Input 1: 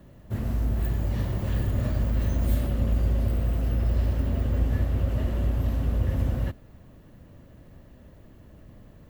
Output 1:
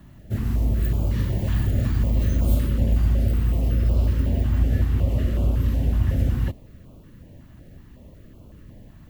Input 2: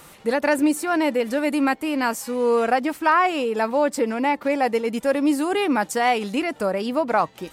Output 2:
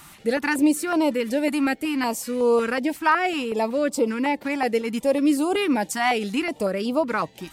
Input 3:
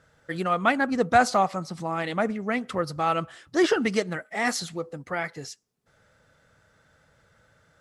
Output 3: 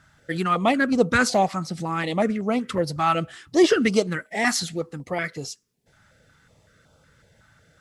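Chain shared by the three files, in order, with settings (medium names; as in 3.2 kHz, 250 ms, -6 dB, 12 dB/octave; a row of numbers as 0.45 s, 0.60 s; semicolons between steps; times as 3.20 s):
step-sequenced notch 5.4 Hz 490–1800 Hz; normalise loudness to -23 LUFS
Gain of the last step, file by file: +4.5 dB, +1.0 dB, +5.5 dB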